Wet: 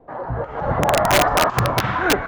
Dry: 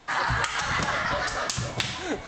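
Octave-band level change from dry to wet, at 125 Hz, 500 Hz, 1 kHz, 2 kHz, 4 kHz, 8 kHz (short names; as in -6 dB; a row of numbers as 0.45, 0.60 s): +9.5, +14.0, +9.5, +4.0, +4.5, +5.5 dB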